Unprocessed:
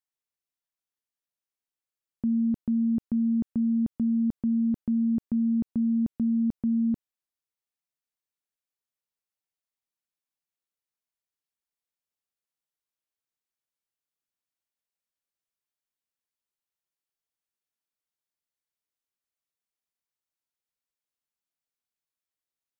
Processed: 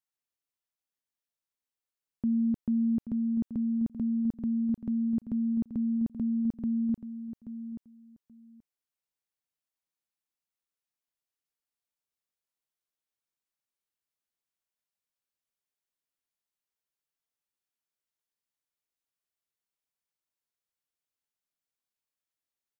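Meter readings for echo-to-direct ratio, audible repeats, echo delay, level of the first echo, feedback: −11.5 dB, 2, 830 ms, −11.5 dB, 15%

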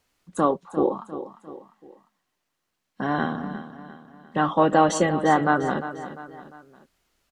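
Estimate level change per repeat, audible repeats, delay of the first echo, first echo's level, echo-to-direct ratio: −7.0 dB, 3, 350 ms, −12.5 dB, −11.5 dB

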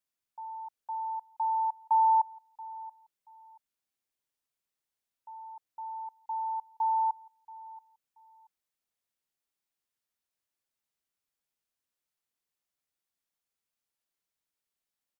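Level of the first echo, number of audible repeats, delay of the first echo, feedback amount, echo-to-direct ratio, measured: −19.5 dB, 2, 680 ms, 24%, −19.5 dB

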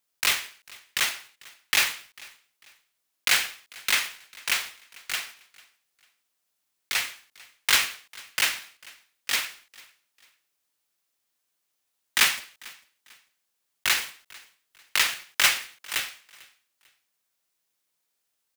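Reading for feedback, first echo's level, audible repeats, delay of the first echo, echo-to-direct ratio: 32%, −23.5 dB, 2, 446 ms, −23.0 dB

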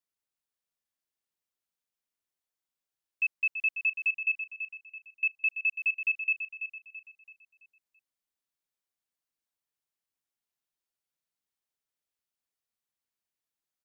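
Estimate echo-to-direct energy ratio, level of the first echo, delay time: −8.0 dB, −9.0 dB, 333 ms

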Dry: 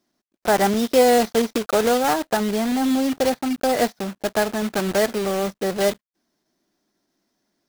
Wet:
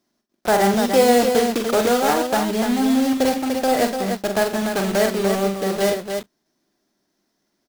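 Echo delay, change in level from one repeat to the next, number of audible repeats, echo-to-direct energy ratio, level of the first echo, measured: 41 ms, repeats not evenly spaced, 4, −3.0 dB, −9.0 dB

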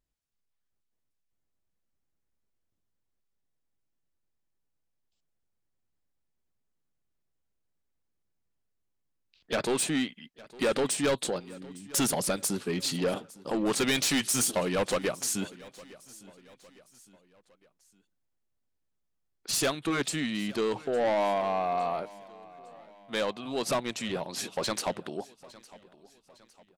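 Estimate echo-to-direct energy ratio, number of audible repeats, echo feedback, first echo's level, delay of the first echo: −20.0 dB, 3, 45%, −21.0 dB, 858 ms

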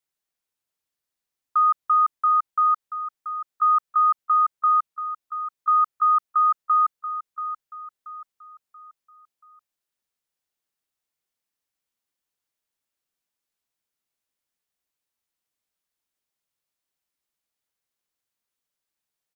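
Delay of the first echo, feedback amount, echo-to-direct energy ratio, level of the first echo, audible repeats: 682 ms, 40%, −10.0 dB, −11.0 dB, 4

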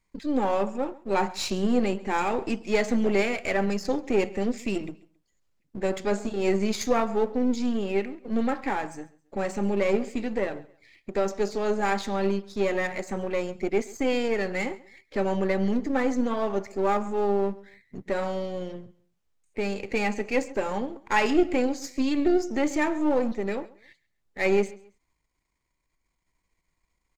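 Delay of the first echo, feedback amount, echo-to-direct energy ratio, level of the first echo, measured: 136 ms, 30%, −21.0 dB, −21.5 dB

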